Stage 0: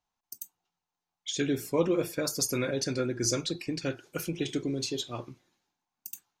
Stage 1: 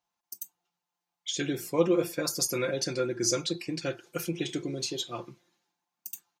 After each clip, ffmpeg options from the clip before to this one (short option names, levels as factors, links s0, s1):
-af "highpass=f=170:p=1,aecho=1:1:5.8:0.54"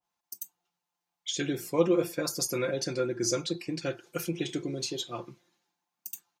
-af "adynamicequalizer=threshold=0.00708:dfrequency=1600:dqfactor=0.7:tfrequency=1600:tqfactor=0.7:attack=5:release=100:ratio=0.375:range=1.5:mode=cutabove:tftype=highshelf"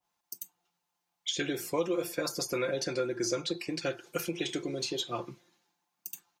-filter_complex "[0:a]acrossover=split=370|3800[s0][s1][s2];[s0]acompressor=threshold=0.00631:ratio=4[s3];[s1]acompressor=threshold=0.0224:ratio=4[s4];[s2]acompressor=threshold=0.00794:ratio=4[s5];[s3][s4][s5]amix=inputs=3:normalize=0,volume=1.5"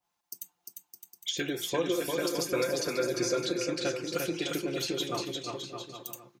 -af "aecho=1:1:350|612.5|809.4|957|1068:0.631|0.398|0.251|0.158|0.1"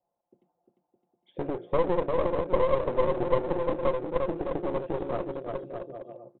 -af "lowpass=f=590:t=q:w=4.9,aresample=8000,aeval=exprs='clip(val(0),-1,0.0158)':c=same,aresample=44100"